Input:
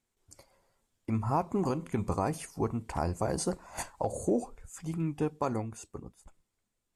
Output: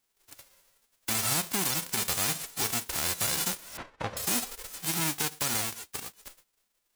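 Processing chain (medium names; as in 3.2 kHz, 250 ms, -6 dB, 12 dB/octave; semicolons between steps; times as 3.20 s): formants flattened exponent 0.1; 3.77–4.17 s: low-pass 1.7 kHz 12 dB/octave; peak limiter -22 dBFS, peak gain reduction 8.5 dB; trim +5 dB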